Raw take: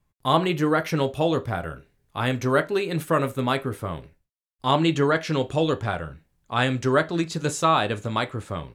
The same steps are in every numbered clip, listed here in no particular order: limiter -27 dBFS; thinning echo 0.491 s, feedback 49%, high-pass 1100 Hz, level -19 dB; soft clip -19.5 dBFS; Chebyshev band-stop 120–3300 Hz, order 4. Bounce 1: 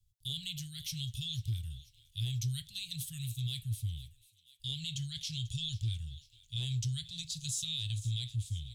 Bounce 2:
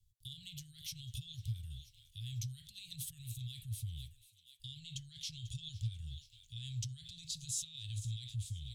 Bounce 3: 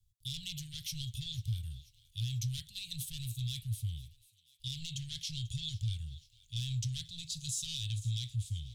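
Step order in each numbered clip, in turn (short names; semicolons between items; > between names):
Chebyshev band-stop > soft clip > thinning echo > limiter; thinning echo > limiter > soft clip > Chebyshev band-stop; soft clip > Chebyshev band-stop > limiter > thinning echo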